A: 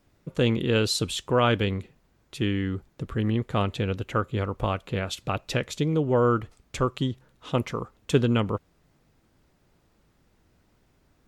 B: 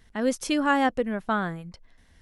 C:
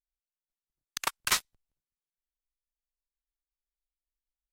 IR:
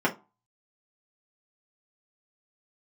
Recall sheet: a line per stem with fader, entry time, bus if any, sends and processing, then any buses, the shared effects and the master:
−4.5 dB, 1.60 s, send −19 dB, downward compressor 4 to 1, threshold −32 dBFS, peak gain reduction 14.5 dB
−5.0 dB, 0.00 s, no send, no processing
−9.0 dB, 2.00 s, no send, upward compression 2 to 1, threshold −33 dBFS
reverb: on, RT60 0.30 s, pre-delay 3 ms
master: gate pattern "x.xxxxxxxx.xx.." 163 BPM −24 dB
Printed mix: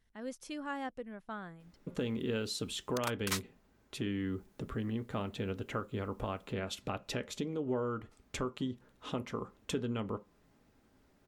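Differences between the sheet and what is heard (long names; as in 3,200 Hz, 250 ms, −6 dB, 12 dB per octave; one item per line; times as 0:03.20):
stem B −5.0 dB → −17.0 dB
master: missing gate pattern "x.xxxxxxxx.xx.." 163 BPM −24 dB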